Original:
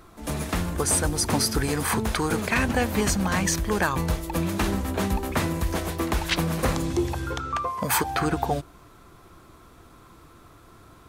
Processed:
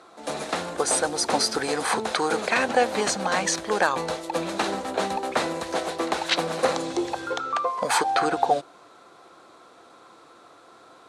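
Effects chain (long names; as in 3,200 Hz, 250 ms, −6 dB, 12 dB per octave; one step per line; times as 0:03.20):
loudspeaker in its box 320–9,300 Hz, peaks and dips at 520 Hz +7 dB, 760 Hz +7 dB, 1,400 Hz +3 dB, 4,000 Hz +6 dB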